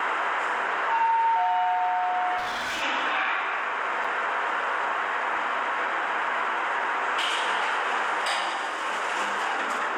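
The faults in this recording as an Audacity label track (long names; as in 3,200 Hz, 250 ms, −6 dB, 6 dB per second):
2.370000	2.830000	clipping −26.5 dBFS
4.040000	4.040000	drop-out 4.1 ms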